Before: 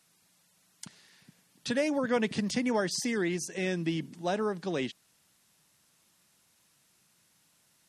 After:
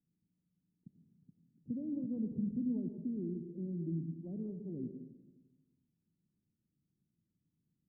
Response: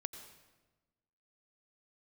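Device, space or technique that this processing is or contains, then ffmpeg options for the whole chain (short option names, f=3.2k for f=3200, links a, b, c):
next room: -filter_complex "[0:a]lowpass=f=290:w=0.5412,lowpass=f=290:w=1.3066[a];[1:a]atrim=start_sample=2205[b];[a][b]afir=irnorm=-1:irlink=0,volume=-2dB"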